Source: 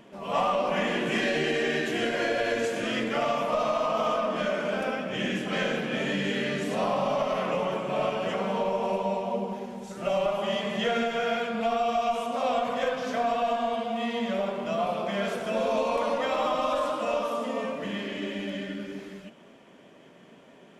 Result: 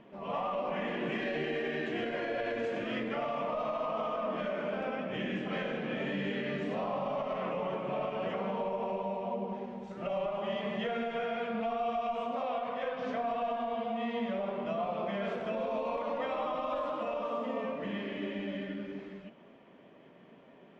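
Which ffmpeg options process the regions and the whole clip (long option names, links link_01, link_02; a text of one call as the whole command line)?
ffmpeg -i in.wav -filter_complex "[0:a]asettb=1/sr,asplit=3[link_01][link_02][link_03];[link_01]atrim=end=12.454[link_04];[link_02]atrim=start=12.45:end=12.99,asetpts=PTS-STARTPTS,afade=type=in:duration=0.004:curve=qsin,afade=type=out:start_time=0.536:duration=0.004:curve=qsin,lowpass=6100,lowshelf=frequency=320:gain=-7[link_05];[link_03]atrim=start=12.986[link_06];[link_04][link_05]acrossfade=duration=0.004:curve1=hsin:curve2=qsin[link_07];[link_07][link_06]acrossfade=duration=0.004:curve1=qsin:curve2=hsin,lowpass=2600,equalizer=frequency=1500:width_type=o:width=0.29:gain=-3.5,alimiter=limit=-22dB:level=0:latency=1:release=120,volume=-3.5dB" out.wav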